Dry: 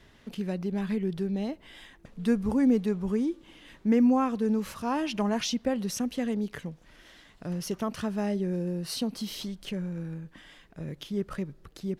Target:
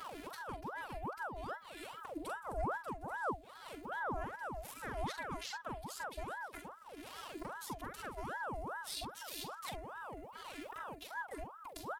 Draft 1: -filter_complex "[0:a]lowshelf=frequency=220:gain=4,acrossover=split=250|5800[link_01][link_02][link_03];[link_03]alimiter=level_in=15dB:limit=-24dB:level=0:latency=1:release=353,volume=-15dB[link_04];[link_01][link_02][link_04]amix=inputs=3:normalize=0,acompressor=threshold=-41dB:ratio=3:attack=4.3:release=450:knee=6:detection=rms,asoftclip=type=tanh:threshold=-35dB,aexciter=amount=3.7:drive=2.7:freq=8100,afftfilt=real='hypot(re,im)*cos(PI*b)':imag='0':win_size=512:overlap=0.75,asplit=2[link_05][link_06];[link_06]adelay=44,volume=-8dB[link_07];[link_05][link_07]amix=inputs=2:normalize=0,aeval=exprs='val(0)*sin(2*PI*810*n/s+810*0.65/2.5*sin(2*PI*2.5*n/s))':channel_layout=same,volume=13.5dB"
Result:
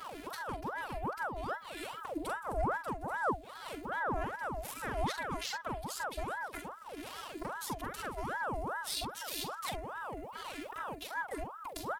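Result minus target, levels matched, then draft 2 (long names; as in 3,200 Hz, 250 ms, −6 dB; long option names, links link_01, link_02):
downward compressor: peak gain reduction −6.5 dB
-filter_complex "[0:a]lowshelf=frequency=220:gain=4,acrossover=split=250|5800[link_01][link_02][link_03];[link_03]alimiter=level_in=15dB:limit=-24dB:level=0:latency=1:release=353,volume=-15dB[link_04];[link_01][link_02][link_04]amix=inputs=3:normalize=0,acompressor=threshold=-50.5dB:ratio=3:attack=4.3:release=450:knee=6:detection=rms,asoftclip=type=tanh:threshold=-35dB,aexciter=amount=3.7:drive=2.7:freq=8100,afftfilt=real='hypot(re,im)*cos(PI*b)':imag='0':win_size=512:overlap=0.75,asplit=2[link_05][link_06];[link_06]adelay=44,volume=-8dB[link_07];[link_05][link_07]amix=inputs=2:normalize=0,aeval=exprs='val(0)*sin(2*PI*810*n/s+810*0.65/2.5*sin(2*PI*2.5*n/s))':channel_layout=same,volume=13.5dB"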